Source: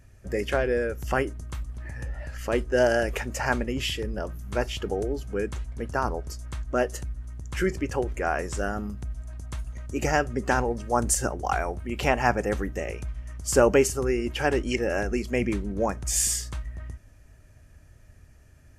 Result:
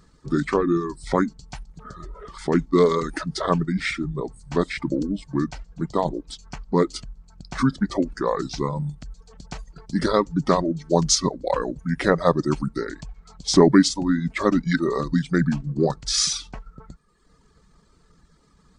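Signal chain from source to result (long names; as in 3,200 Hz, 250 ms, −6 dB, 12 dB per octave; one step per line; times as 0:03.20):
reverb reduction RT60 1 s
low shelf with overshoot 170 Hz −7 dB, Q 3
pitch shifter −6 semitones
level +4.5 dB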